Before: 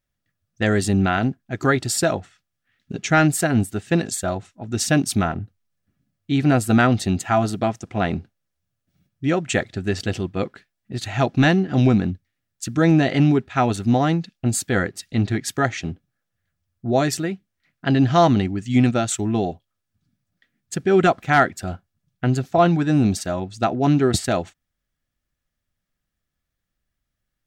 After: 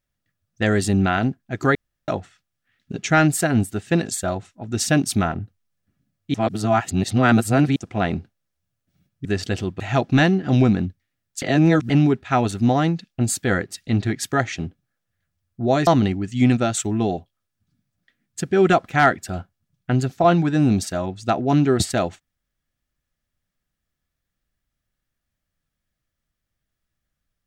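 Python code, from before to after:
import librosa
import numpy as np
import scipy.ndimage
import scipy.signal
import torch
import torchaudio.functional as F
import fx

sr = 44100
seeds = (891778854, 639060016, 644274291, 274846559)

y = fx.edit(x, sr, fx.room_tone_fill(start_s=1.75, length_s=0.33),
    fx.reverse_span(start_s=6.34, length_s=1.42),
    fx.cut(start_s=9.25, length_s=0.57),
    fx.cut(start_s=10.37, length_s=0.68),
    fx.reverse_span(start_s=12.67, length_s=0.48),
    fx.cut(start_s=17.12, length_s=1.09), tone=tone)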